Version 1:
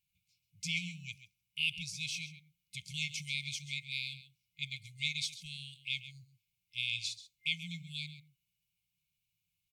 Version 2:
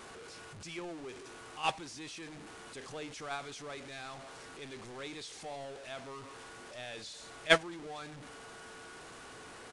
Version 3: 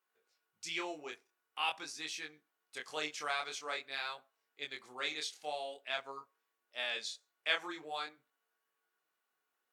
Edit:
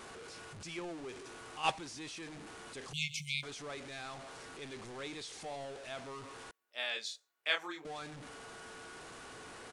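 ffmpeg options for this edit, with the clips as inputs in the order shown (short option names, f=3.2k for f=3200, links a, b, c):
-filter_complex "[1:a]asplit=3[a][b][c];[a]atrim=end=2.932[d];[0:a]atrim=start=2.928:end=3.432[e];[b]atrim=start=3.428:end=6.512[f];[2:a]atrim=start=6.508:end=7.852[g];[c]atrim=start=7.848[h];[d][e]acrossfade=d=0.004:c1=hsin:c2=hsin[i];[i][f]acrossfade=d=0.004:c1=hsin:c2=hsin[j];[j][g]acrossfade=d=0.004:c1=hsin:c2=hsin[k];[k][h]acrossfade=d=0.004:c1=hsin:c2=hsin"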